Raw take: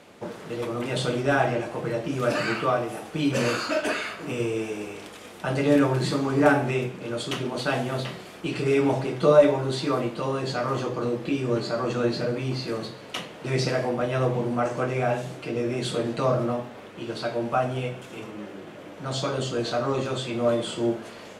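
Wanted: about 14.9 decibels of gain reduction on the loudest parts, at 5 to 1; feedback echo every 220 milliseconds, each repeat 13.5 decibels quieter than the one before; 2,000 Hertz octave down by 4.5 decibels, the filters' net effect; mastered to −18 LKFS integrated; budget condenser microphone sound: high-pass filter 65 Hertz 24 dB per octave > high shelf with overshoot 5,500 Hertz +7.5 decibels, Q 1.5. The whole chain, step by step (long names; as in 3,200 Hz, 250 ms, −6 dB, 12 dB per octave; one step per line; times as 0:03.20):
parametric band 2,000 Hz −5.5 dB
downward compressor 5 to 1, threshold −27 dBFS
high-pass filter 65 Hz 24 dB per octave
high shelf with overshoot 5,500 Hz +7.5 dB, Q 1.5
repeating echo 220 ms, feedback 21%, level −13.5 dB
level +13.5 dB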